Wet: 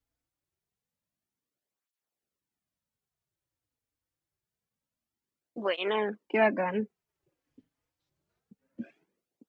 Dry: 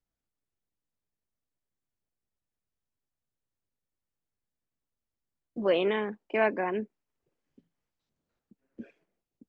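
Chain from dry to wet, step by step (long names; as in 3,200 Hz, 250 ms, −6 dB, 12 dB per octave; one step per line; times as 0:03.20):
through-zero flanger with one copy inverted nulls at 0.26 Hz, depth 5.6 ms
level +4.5 dB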